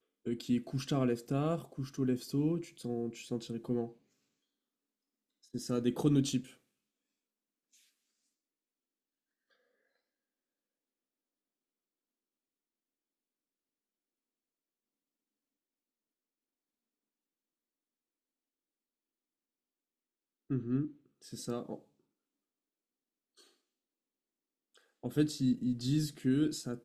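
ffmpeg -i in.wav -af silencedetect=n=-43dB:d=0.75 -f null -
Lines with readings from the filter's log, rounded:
silence_start: 3.89
silence_end: 5.54 | silence_duration: 1.65
silence_start: 6.41
silence_end: 20.50 | silence_duration: 14.09
silence_start: 21.76
silence_end: 25.04 | silence_duration: 3.27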